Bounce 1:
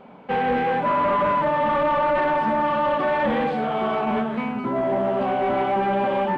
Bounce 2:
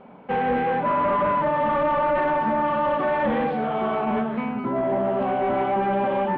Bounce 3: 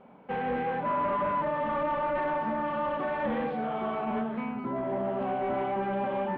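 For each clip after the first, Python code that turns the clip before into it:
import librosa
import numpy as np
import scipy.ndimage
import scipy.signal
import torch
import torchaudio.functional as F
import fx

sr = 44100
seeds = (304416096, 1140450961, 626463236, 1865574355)

y1 = fx.air_absorb(x, sr, metres=250.0)
y2 = fx.doubler(y1, sr, ms=31.0, db=-12.5)
y2 = y2 * librosa.db_to_amplitude(-7.5)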